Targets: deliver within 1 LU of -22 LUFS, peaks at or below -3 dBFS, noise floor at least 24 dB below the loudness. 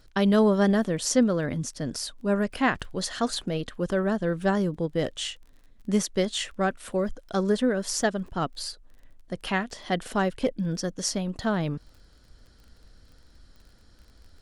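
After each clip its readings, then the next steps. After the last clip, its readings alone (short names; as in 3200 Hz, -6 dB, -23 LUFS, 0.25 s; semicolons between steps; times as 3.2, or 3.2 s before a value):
ticks 24/s; loudness -27.0 LUFS; peak -10.0 dBFS; loudness target -22.0 LUFS
-> de-click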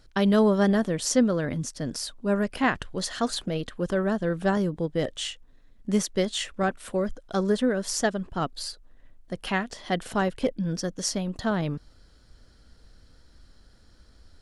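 ticks 0/s; loudness -27.0 LUFS; peak -10.0 dBFS; loudness target -22.0 LUFS
-> gain +5 dB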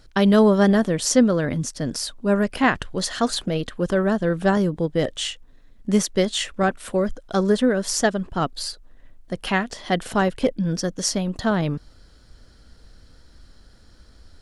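loudness -22.0 LUFS; peak -5.0 dBFS; noise floor -51 dBFS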